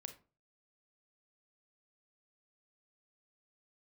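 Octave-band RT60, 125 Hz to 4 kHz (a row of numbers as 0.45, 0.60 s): 0.50, 0.40, 0.40, 0.35, 0.25, 0.20 s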